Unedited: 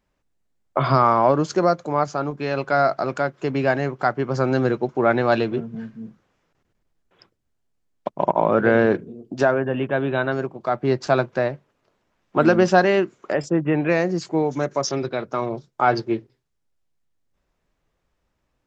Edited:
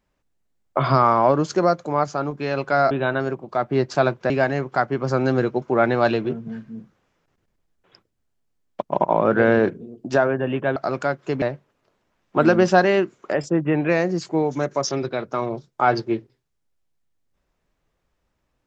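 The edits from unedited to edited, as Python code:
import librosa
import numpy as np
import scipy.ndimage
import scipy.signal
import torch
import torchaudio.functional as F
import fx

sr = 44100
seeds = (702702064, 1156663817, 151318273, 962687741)

y = fx.edit(x, sr, fx.swap(start_s=2.91, length_s=0.66, other_s=10.03, other_length_s=1.39), tone=tone)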